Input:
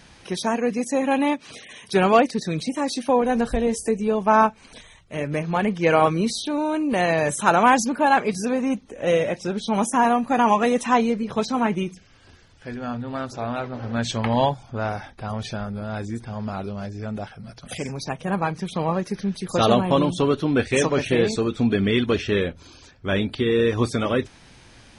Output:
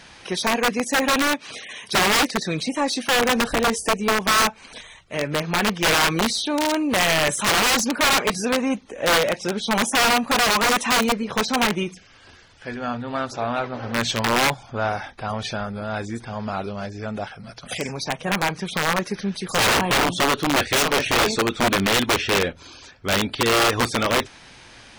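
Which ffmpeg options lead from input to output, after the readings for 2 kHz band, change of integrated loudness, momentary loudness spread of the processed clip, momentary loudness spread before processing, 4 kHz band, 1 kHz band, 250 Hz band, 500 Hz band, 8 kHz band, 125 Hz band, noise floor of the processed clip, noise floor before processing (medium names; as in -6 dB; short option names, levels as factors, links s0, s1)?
+7.0 dB, +1.5 dB, 12 LU, 13 LU, +10.5 dB, 0.0 dB, -2.5 dB, -2.0 dB, +9.0 dB, -3.0 dB, -48 dBFS, -51 dBFS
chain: -filter_complex "[0:a]aeval=exprs='(mod(5.62*val(0)+1,2)-1)/5.62':c=same,asplit=2[s0][s1];[s1]highpass=f=720:p=1,volume=2.24,asoftclip=type=tanh:threshold=0.188[s2];[s0][s2]amix=inputs=2:normalize=0,lowpass=f=6300:p=1,volume=0.501,volume=1.41"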